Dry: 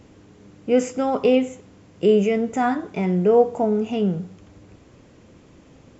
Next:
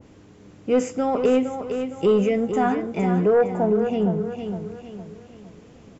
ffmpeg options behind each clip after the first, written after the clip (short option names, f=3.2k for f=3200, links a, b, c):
-af "aeval=exprs='0.562*sin(PI/2*1.41*val(0)/0.562)':c=same,aecho=1:1:460|920|1380|1840|2300:0.398|0.159|0.0637|0.0255|0.0102,adynamicequalizer=threshold=0.0282:dfrequency=1900:dqfactor=0.7:tfrequency=1900:tqfactor=0.7:attack=5:release=100:ratio=0.375:range=3:mode=cutabove:tftype=highshelf,volume=-7dB"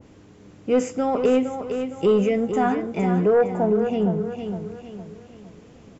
-af anull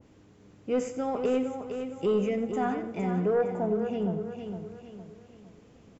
-af "aecho=1:1:89|178|267|356:0.224|0.0918|0.0376|0.0154,volume=-8dB"